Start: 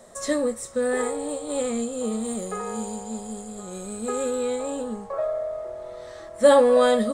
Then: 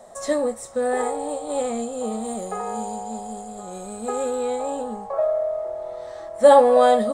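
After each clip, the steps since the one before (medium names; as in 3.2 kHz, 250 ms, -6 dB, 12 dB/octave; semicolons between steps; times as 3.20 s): peaking EQ 760 Hz +12.5 dB 0.66 oct; trim -2 dB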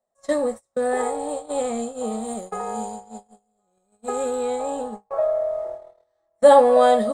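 gate -29 dBFS, range -35 dB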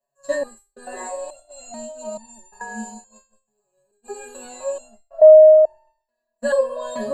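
rippled EQ curve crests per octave 1.4, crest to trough 18 dB; resonator arpeggio 2.3 Hz 140–900 Hz; trim +8 dB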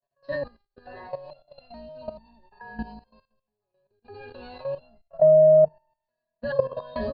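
octave divider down 2 oct, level -4 dB; resampled via 11.025 kHz; level held to a coarse grid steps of 14 dB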